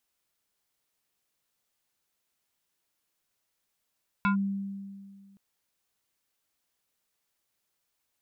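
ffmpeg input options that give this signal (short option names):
-f lavfi -i "aevalsrc='0.0944*pow(10,-3*t/1.98)*sin(2*PI*197*t+1.4*clip(1-t/0.11,0,1)*sin(2*PI*6.17*197*t))':d=1.12:s=44100"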